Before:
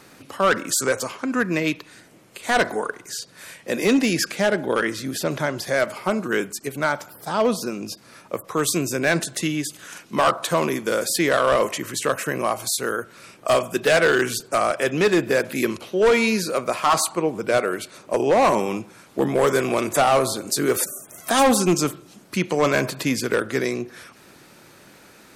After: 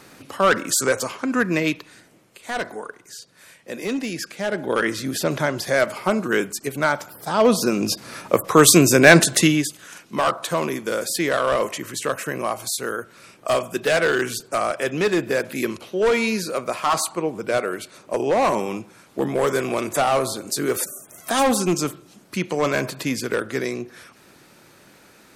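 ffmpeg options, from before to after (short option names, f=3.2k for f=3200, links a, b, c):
-af "volume=19dB,afade=t=out:st=1.6:d=0.81:silence=0.354813,afade=t=in:st=4.38:d=0.52:silence=0.334965,afade=t=in:st=7.36:d=0.54:silence=0.398107,afade=t=out:st=9.35:d=0.41:silence=0.251189"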